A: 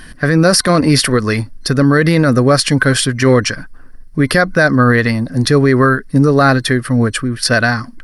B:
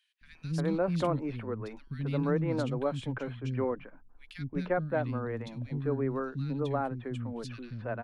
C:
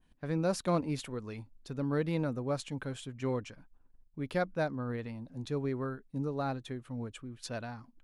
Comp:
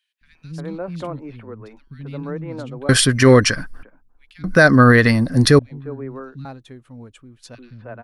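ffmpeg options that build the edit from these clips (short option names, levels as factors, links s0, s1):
-filter_complex "[0:a]asplit=2[s0][s1];[1:a]asplit=4[s2][s3][s4][s5];[s2]atrim=end=2.892[s6];[s0]atrim=start=2.888:end=3.832[s7];[s3]atrim=start=3.828:end=4.442[s8];[s1]atrim=start=4.438:end=5.592[s9];[s4]atrim=start=5.588:end=6.452[s10];[2:a]atrim=start=6.448:end=7.552[s11];[s5]atrim=start=7.548[s12];[s6][s7]acrossfade=d=0.004:c1=hsin:c2=hsin[s13];[s13][s8]acrossfade=d=0.004:c1=hsin:c2=hsin[s14];[s14][s9]acrossfade=d=0.004:c1=hsin:c2=hsin[s15];[s15][s10]acrossfade=d=0.004:c1=hsin:c2=hsin[s16];[s16][s11]acrossfade=d=0.004:c1=hsin:c2=hsin[s17];[s17][s12]acrossfade=d=0.004:c1=hsin:c2=hsin"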